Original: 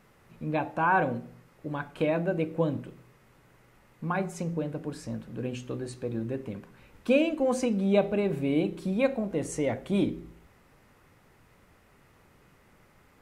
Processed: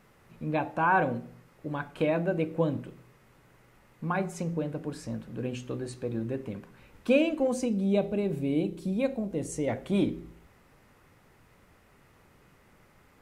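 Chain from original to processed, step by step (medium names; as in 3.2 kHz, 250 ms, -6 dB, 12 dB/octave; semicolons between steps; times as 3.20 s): 7.47–9.68 s: peaking EQ 1.4 kHz -8.5 dB 2.4 oct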